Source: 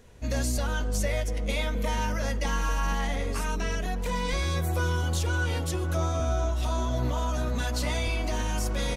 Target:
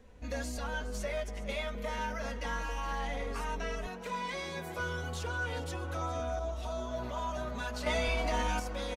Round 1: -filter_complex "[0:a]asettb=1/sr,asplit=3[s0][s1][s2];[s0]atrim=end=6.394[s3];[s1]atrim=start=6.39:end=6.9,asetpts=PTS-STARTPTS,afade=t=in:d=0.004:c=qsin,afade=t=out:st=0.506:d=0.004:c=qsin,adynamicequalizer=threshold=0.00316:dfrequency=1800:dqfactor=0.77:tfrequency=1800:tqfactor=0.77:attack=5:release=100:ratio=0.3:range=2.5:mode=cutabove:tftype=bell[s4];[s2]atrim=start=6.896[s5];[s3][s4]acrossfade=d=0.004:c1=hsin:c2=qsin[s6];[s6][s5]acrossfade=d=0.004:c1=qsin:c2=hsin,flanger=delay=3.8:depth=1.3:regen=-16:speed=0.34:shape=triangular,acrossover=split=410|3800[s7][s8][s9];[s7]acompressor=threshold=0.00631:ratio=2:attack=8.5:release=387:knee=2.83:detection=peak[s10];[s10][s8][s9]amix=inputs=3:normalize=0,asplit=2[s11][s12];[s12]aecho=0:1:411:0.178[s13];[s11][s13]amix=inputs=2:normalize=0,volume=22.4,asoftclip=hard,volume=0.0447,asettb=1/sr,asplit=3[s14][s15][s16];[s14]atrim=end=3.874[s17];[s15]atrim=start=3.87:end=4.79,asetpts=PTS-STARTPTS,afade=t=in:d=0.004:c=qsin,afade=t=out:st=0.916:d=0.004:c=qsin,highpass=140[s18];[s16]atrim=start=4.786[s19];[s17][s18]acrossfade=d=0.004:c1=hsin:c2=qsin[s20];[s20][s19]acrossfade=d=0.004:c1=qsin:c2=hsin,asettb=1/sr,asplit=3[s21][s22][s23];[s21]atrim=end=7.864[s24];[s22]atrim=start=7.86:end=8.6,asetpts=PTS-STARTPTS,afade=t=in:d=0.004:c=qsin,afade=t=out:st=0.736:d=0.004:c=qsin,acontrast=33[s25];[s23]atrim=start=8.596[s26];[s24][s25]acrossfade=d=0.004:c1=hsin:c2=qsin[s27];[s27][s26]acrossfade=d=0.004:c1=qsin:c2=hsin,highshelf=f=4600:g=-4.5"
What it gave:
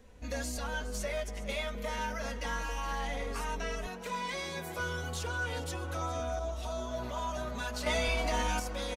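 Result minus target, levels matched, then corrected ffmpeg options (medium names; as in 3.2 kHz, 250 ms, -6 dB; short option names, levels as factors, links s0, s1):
8 kHz band +4.0 dB
-filter_complex "[0:a]asettb=1/sr,asplit=3[s0][s1][s2];[s0]atrim=end=6.394[s3];[s1]atrim=start=6.39:end=6.9,asetpts=PTS-STARTPTS,afade=t=in:d=0.004:c=qsin,afade=t=out:st=0.506:d=0.004:c=qsin,adynamicequalizer=threshold=0.00316:dfrequency=1800:dqfactor=0.77:tfrequency=1800:tqfactor=0.77:attack=5:release=100:ratio=0.3:range=2.5:mode=cutabove:tftype=bell[s4];[s2]atrim=start=6.896[s5];[s3][s4]acrossfade=d=0.004:c1=hsin:c2=qsin[s6];[s6][s5]acrossfade=d=0.004:c1=qsin:c2=hsin,flanger=delay=3.8:depth=1.3:regen=-16:speed=0.34:shape=triangular,acrossover=split=410|3800[s7][s8][s9];[s7]acompressor=threshold=0.00631:ratio=2:attack=8.5:release=387:knee=2.83:detection=peak[s10];[s10][s8][s9]amix=inputs=3:normalize=0,asplit=2[s11][s12];[s12]aecho=0:1:411:0.178[s13];[s11][s13]amix=inputs=2:normalize=0,volume=22.4,asoftclip=hard,volume=0.0447,asettb=1/sr,asplit=3[s14][s15][s16];[s14]atrim=end=3.874[s17];[s15]atrim=start=3.87:end=4.79,asetpts=PTS-STARTPTS,afade=t=in:d=0.004:c=qsin,afade=t=out:st=0.916:d=0.004:c=qsin,highpass=140[s18];[s16]atrim=start=4.786[s19];[s17][s18]acrossfade=d=0.004:c1=hsin:c2=qsin[s20];[s20][s19]acrossfade=d=0.004:c1=qsin:c2=hsin,asettb=1/sr,asplit=3[s21][s22][s23];[s21]atrim=end=7.864[s24];[s22]atrim=start=7.86:end=8.6,asetpts=PTS-STARTPTS,afade=t=in:d=0.004:c=qsin,afade=t=out:st=0.736:d=0.004:c=qsin,acontrast=33[s25];[s23]atrim=start=8.596[s26];[s24][s25]acrossfade=d=0.004:c1=hsin:c2=qsin[s27];[s27][s26]acrossfade=d=0.004:c1=qsin:c2=hsin,highshelf=f=4600:g=-11"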